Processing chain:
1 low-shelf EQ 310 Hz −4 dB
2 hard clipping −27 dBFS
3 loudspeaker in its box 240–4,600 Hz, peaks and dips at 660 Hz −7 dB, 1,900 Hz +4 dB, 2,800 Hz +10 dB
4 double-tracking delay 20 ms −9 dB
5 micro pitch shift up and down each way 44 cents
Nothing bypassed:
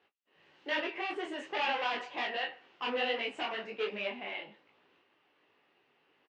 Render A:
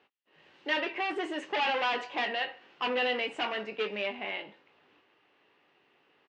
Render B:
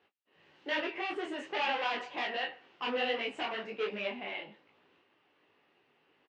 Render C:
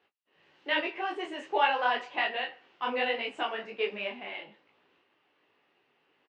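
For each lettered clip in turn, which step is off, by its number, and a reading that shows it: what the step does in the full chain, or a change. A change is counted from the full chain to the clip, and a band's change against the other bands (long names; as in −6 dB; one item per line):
5, change in integrated loudness +3.5 LU
1, 250 Hz band +1.5 dB
2, distortion level −6 dB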